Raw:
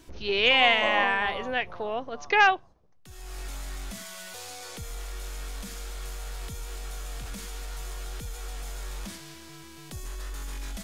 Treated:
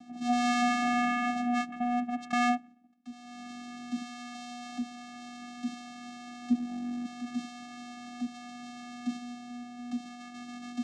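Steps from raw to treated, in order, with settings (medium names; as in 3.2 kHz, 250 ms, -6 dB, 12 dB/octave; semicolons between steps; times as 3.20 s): 6.50–7.05 s: bass shelf 430 Hz +11 dB; saturation -24.5 dBFS, distortion -6 dB; vocoder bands 4, square 243 Hz; trim +3 dB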